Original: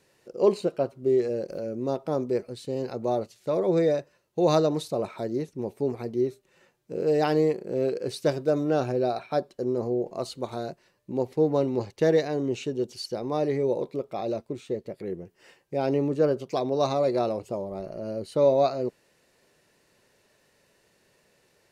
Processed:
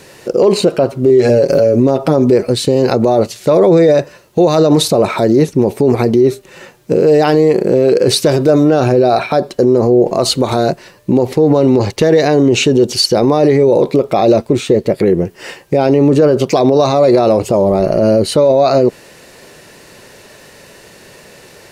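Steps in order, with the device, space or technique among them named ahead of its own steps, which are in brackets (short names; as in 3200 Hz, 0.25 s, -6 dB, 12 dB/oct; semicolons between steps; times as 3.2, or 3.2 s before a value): 1.09–2.32 comb 7.2 ms, depth 72%; loud club master (compressor 2.5:1, threshold -24 dBFS, peak gain reduction 6.5 dB; hard clip -16 dBFS, distortion -44 dB; maximiser +26.5 dB); gain -1 dB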